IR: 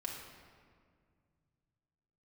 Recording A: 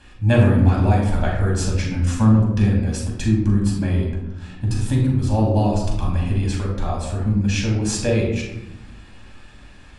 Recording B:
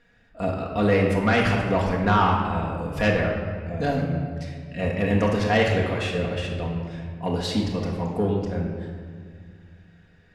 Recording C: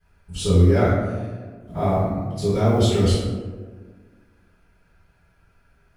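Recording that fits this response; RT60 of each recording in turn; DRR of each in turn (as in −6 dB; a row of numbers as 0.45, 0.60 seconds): B; 0.95, 2.0, 1.5 seconds; −2.5, −2.0, −18.0 decibels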